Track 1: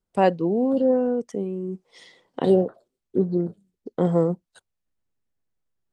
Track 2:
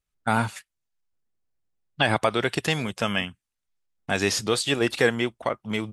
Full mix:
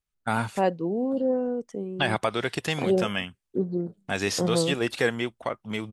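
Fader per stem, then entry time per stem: -5.0 dB, -3.5 dB; 0.40 s, 0.00 s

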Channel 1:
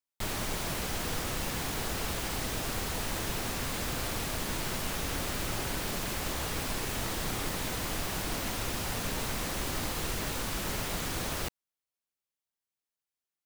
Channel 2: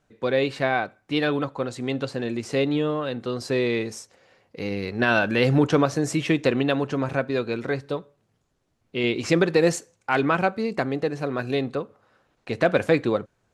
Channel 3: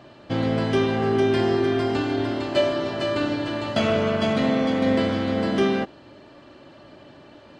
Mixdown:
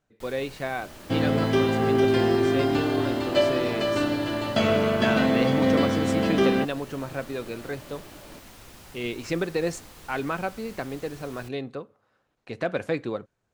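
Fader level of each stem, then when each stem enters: -13.5 dB, -7.5 dB, -0.5 dB; 0.00 s, 0.00 s, 0.80 s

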